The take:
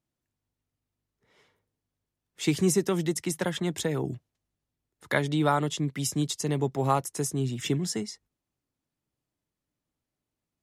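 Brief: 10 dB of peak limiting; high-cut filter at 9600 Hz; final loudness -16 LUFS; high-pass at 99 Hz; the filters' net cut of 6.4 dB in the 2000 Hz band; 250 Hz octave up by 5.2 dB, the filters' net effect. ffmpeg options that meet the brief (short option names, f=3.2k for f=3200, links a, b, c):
-af "highpass=99,lowpass=9.6k,equalizer=f=250:t=o:g=8,equalizer=f=2k:t=o:g=-8.5,volume=13dB,alimiter=limit=-6dB:level=0:latency=1"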